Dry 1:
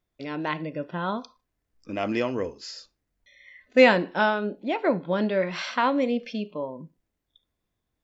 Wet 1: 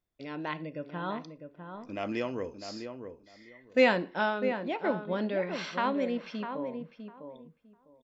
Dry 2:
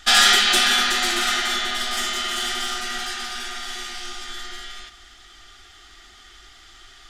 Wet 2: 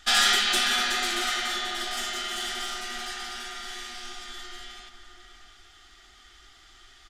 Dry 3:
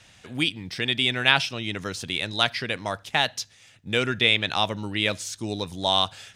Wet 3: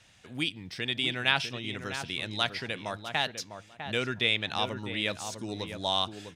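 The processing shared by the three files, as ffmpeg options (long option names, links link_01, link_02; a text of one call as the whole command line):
ffmpeg -i in.wav -filter_complex "[0:a]asplit=2[link_01][link_02];[link_02]adelay=652,lowpass=frequency=1500:poles=1,volume=-7.5dB,asplit=2[link_03][link_04];[link_04]adelay=652,lowpass=frequency=1500:poles=1,volume=0.19,asplit=2[link_05][link_06];[link_06]adelay=652,lowpass=frequency=1500:poles=1,volume=0.19[link_07];[link_01][link_03][link_05][link_07]amix=inputs=4:normalize=0,volume=-6.5dB" out.wav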